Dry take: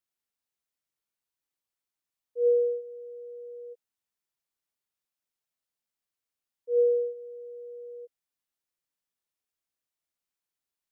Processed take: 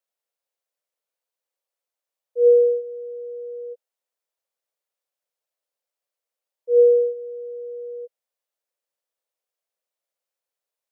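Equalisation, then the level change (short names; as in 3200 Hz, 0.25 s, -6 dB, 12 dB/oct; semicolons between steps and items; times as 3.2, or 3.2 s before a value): resonant high-pass 530 Hz, resonance Q 3.8; 0.0 dB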